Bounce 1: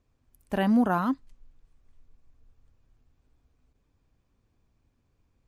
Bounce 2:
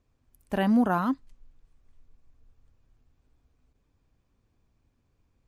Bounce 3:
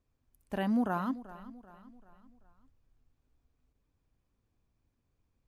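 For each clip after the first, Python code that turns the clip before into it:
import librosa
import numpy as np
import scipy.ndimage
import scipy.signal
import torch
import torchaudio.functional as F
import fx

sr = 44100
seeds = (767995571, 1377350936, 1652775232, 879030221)

y1 = x
y2 = fx.echo_feedback(y1, sr, ms=387, feedback_pct=46, wet_db=-16.5)
y2 = y2 * librosa.db_to_amplitude(-7.0)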